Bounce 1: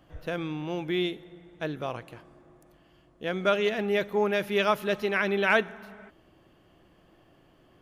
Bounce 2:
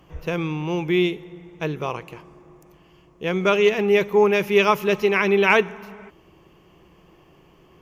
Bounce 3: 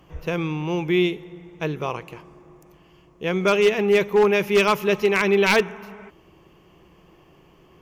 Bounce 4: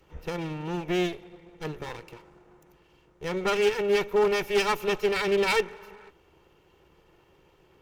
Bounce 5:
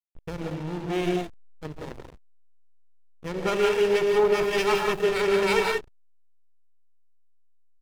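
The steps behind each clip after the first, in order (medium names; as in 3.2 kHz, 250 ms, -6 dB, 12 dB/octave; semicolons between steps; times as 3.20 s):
rippled EQ curve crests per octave 0.77, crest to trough 8 dB; trim +6 dB
wavefolder -10 dBFS
comb filter that takes the minimum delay 2.2 ms; trim -5.5 dB
gated-style reverb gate 210 ms rising, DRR 0 dB; resampled via 32 kHz; hysteresis with a dead band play -27 dBFS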